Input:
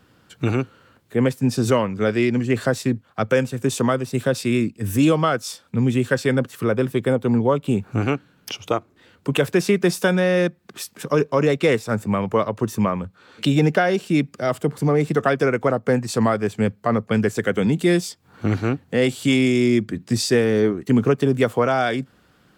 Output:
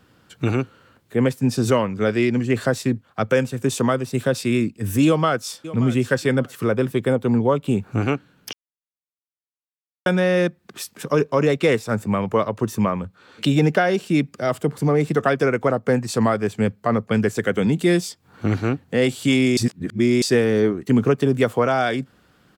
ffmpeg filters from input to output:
ffmpeg -i in.wav -filter_complex "[0:a]asplit=2[link_01][link_02];[link_02]afade=type=in:start_time=5.06:duration=0.01,afade=type=out:start_time=5.75:duration=0.01,aecho=0:1:580|1160:0.158489|0.0316979[link_03];[link_01][link_03]amix=inputs=2:normalize=0,asplit=5[link_04][link_05][link_06][link_07][link_08];[link_04]atrim=end=8.53,asetpts=PTS-STARTPTS,afade=type=out:start_time=8.526:duration=0.004:curve=hsin[link_09];[link_05]atrim=start=8.53:end=10.06,asetpts=PTS-STARTPTS,volume=0[link_10];[link_06]atrim=start=10.06:end=19.572,asetpts=PTS-STARTPTS,afade=type=in:duration=0.004:curve=hsin[link_11];[link_07]atrim=start=19.568:end=20.222,asetpts=PTS-STARTPTS,areverse[link_12];[link_08]atrim=start=20.218[link_13];[link_09][link_10][link_11]concat=n=3:v=0:a=1[link_14];[link_14][link_12]acrossfade=duration=0.004:curve1=hsin:curve2=hsin[link_15];[link_15][link_13]acrossfade=duration=0.004:curve1=hsin:curve2=hsin" out.wav

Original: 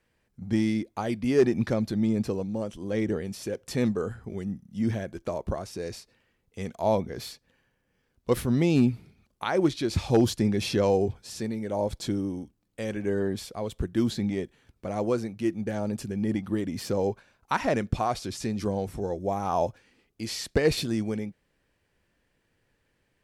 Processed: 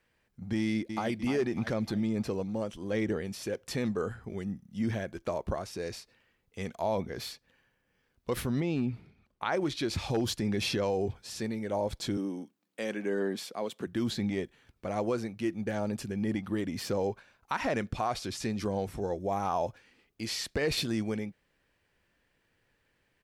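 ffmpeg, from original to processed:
ffmpeg -i in.wav -filter_complex "[0:a]asplit=2[link_01][link_02];[link_02]afade=type=in:start_time=0.59:duration=0.01,afade=type=out:start_time=1.16:duration=0.01,aecho=0:1:300|600|900|1200|1500|1800:0.354813|0.177407|0.0887033|0.0443517|0.0221758|0.0110879[link_03];[link_01][link_03]amix=inputs=2:normalize=0,asettb=1/sr,asplit=3[link_04][link_05][link_06];[link_04]atrim=end=8.604[link_07];[link_05]atrim=start=8.6:end=9.52,asetpts=PTS-STARTPTS,afade=type=in:duration=0.004:curve=qsin,afade=type=out:start_time=0.916:duration=0.004:curve=qsin,lowpass=frequency=2500:poles=1[link_08];[link_06]atrim=start=9.516[link_09];[link_07][link_08]acrossfade=duration=0.004:curve1=hsin:curve2=qsin[link_10];[link_10][link_09]acrossfade=duration=0.004:curve1=qsin:curve2=hsin,asettb=1/sr,asplit=3[link_11][link_12][link_13];[link_11]atrim=end=12.174[link_14];[link_12]atrim=start=12.17:end=13.87,asetpts=PTS-STARTPTS,afade=type=in:duration=0.004:curve=qsin,afade=type=out:start_time=1.696:duration=0.004:curve=qsin,highpass=frequency=180:width=0.5412,highpass=frequency=180:width=1.3066[link_15];[link_13]atrim=start=13.866[link_16];[link_14][link_15]acrossfade=duration=0.004:curve1=hsin:curve2=qsin[link_17];[link_17][link_16]acrossfade=duration=0.004:curve1=qsin:curve2=hsin,equalizer=frequency=9300:width=0.43:gain=-6,alimiter=limit=-19.5dB:level=0:latency=1:release=63,tiltshelf=frequency=880:gain=-3.5" out.wav

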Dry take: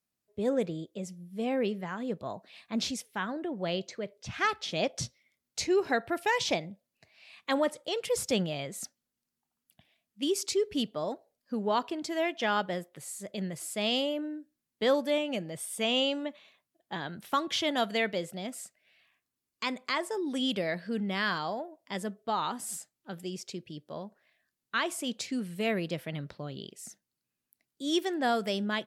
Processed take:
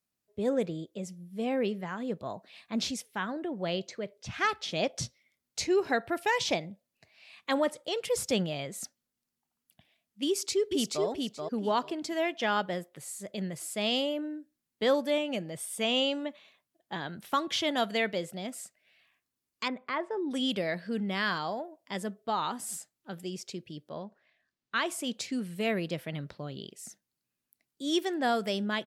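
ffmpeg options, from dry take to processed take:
ffmpeg -i in.wav -filter_complex "[0:a]asplit=2[link_01][link_02];[link_02]afade=type=in:start_time=10.28:duration=0.01,afade=type=out:start_time=11.05:duration=0.01,aecho=0:1:430|860|1290:0.668344|0.133669|0.0267338[link_03];[link_01][link_03]amix=inputs=2:normalize=0,asettb=1/sr,asplit=3[link_04][link_05][link_06];[link_04]atrim=end=19.684[link_07];[link_05]atrim=start=19.68:end=20.31,asetpts=PTS-STARTPTS,afade=type=in:duration=0.004:curve=qsin,afade=type=out:start_time=0.626:duration=0.004:curve=qsin,lowpass=1900[link_08];[link_06]atrim=start=20.306[link_09];[link_07][link_08]acrossfade=duration=0.004:curve1=hsin:curve2=qsin[link_10];[link_10][link_09]acrossfade=duration=0.004:curve1=qsin:curve2=hsin,asettb=1/sr,asplit=3[link_11][link_12][link_13];[link_11]atrim=end=23.894[link_14];[link_12]atrim=start=23.89:end=24.76,asetpts=PTS-STARTPTS,afade=type=in:duration=0.004:curve=qsin,afade=type=out:start_time=0.866:duration=0.004:curve=qsin,lowpass=5200[link_15];[link_13]atrim=start=24.756[link_16];[link_14][link_15]acrossfade=duration=0.004:curve1=hsin:curve2=qsin[link_17];[link_17][link_16]acrossfade=duration=0.004:curve1=qsin:curve2=hsin" out.wav

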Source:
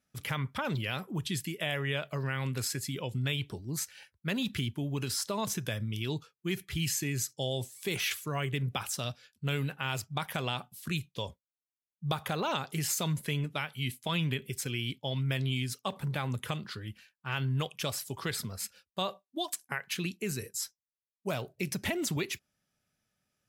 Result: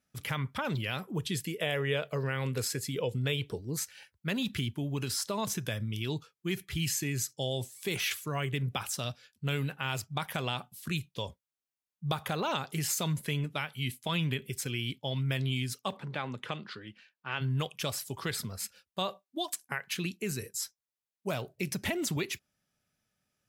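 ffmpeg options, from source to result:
ffmpeg -i in.wav -filter_complex "[0:a]asettb=1/sr,asplit=3[link_01][link_02][link_03];[link_01]atrim=end=1.164[link_04];[link_02]atrim=start=1.16:end=3.77,asetpts=PTS-STARTPTS,afade=type=in:duration=0.004:curve=qsin,afade=type=out:start_time=2.606:duration=0.004:curve=qsin,equalizer=frequency=470:width_type=o:width=0.32:gain=12.5[link_05];[link_03]atrim=start=3.766[link_06];[link_04][link_05]acrossfade=duration=0.004:curve1=hsin:curve2=qsin[link_07];[link_07][link_06]acrossfade=duration=0.004:curve1=qsin:curve2=hsin,asplit=3[link_08][link_09][link_10];[link_08]afade=type=out:start_time=15.96:duration=0.02[link_11];[link_09]highpass=200,lowpass=4300,afade=type=in:start_time=15.96:duration=0.02,afade=type=out:start_time=17.4:duration=0.02[link_12];[link_10]afade=type=in:start_time=17.4:duration=0.02[link_13];[link_11][link_12][link_13]amix=inputs=3:normalize=0" out.wav

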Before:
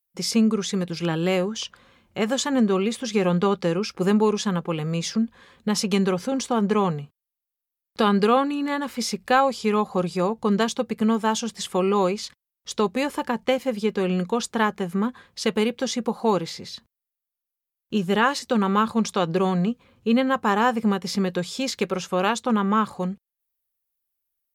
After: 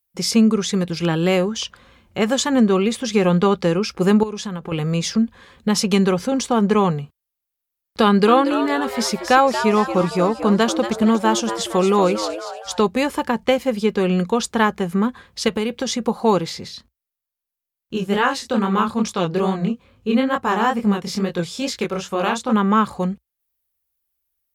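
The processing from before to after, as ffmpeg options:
ffmpeg -i in.wav -filter_complex "[0:a]asettb=1/sr,asplit=3[link_01][link_02][link_03];[link_01]atrim=end=4.234[link_04];[link_02]atrim=start=4.23:end=4.72,asetpts=PTS-STARTPTS,afade=type=in:duration=0.004:curve=qsin,afade=type=out:start_time=0.486:duration=0.004:curve=qsin,acompressor=threshold=-30dB:ratio=5:attack=3.2:release=140:knee=1:detection=peak[link_05];[link_03]atrim=start=4.716[link_06];[link_04][link_05]acrossfade=duration=0.004:curve1=hsin:curve2=qsin[link_07];[link_07][link_06]acrossfade=duration=0.004:curve1=qsin:curve2=hsin,asettb=1/sr,asplit=3[link_08][link_09][link_10];[link_08]atrim=end=8.044[link_11];[link_09]atrim=start=8.04:end=12.85,asetpts=PTS-STARTPTS,afade=type=in:duration=0.004:curve=qsin,afade=type=out:start_time=4.806:duration=0.004:curve=qsin,asplit=6[link_12][link_13][link_14][link_15][link_16][link_17];[link_13]adelay=232,afreqshift=120,volume=-10dB[link_18];[link_14]adelay=464,afreqshift=240,volume=-16.4dB[link_19];[link_15]adelay=696,afreqshift=360,volume=-22.8dB[link_20];[link_16]adelay=928,afreqshift=480,volume=-29.1dB[link_21];[link_17]adelay=1160,afreqshift=600,volume=-35.5dB[link_22];[link_12][link_18][link_19][link_20][link_21][link_22]amix=inputs=6:normalize=0,atrim=end_sample=212121[link_23];[link_10]atrim=start=12.846[link_24];[link_11][link_23]acrossfade=duration=0.004:curve1=hsin:curve2=qsin[link_25];[link_25][link_24]acrossfade=duration=0.004:curve1=qsin:curve2=hsin,asettb=1/sr,asplit=3[link_26][link_27][link_28];[link_26]atrim=end=15.484[link_29];[link_27]atrim=start=15.48:end=16.05,asetpts=PTS-STARTPTS,afade=type=in:duration=0.004:curve=qsin,afade=type=out:start_time=0.566:duration=0.004:curve=qsin,acompressor=threshold=-22dB:ratio=6:attack=3.2:release=140:knee=1:detection=peak[link_30];[link_28]atrim=start=16.046[link_31];[link_29][link_30]acrossfade=duration=0.004:curve1=hsin:curve2=qsin[link_32];[link_32][link_31]acrossfade=duration=0.004:curve1=qsin:curve2=hsin,asplit=3[link_33][link_34][link_35];[link_33]afade=type=out:start_time=16.67:duration=0.02[link_36];[link_34]flanger=delay=19.5:depth=7.6:speed=2.3,afade=type=in:start_time=16.67:duration=0.02,afade=type=out:start_time=22.52:duration=0.02[link_37];[link_35]afade=type=in:start_time=22.52:duration=0.02[link_38];[link_36][link_37][link_38]amix=inputs=3:normalize=0,equalizer=frequency=61:width_type=o:width=0.77:gain=11,volume=4.5dB" out.wav

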